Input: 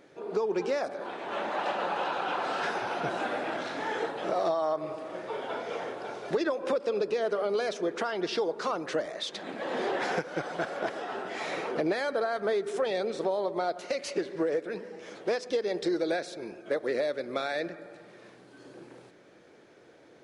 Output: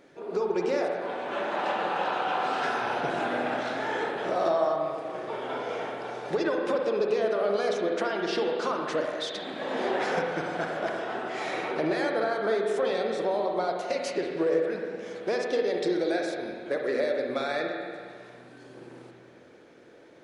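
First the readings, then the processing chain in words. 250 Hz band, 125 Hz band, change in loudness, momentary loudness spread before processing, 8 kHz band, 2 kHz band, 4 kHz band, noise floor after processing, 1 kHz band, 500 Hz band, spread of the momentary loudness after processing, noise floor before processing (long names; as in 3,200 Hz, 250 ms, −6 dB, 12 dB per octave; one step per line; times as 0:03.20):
+2.5 dB, +2.5 dB, +2.5 dB, 8 LU, 0.0 dB, +2.5 dB, +1.5 dB, −52 dBFS, +3.0 dB, +2.5 dB, 9 LU, −56 dBFS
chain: spring reverb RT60 1.9 s, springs 45/49/57 ms, chirp 25 ms, DRR 1 dB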